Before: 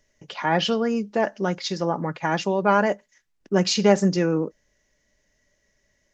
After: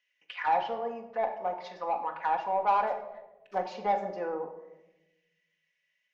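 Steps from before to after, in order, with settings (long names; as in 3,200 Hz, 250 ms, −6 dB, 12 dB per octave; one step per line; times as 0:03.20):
0:00.76–0:02.07: parametric band 1,400 Hz −10 dB 0.24 octaves
0:02.87–0:03.58: sample-rate reduction 5,900 Hz, jitter 20%
envelope filter 790–2,700 Hz, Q 3.7, down, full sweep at −20 dBFS
mid-hump overdrive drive 9 dB, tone 2,500 Hz, clips at −19 dBFS
convolution reverb RT60 1.0 s, pre-delay 4 ms, DRR 2.5 dB
level −1.5 dB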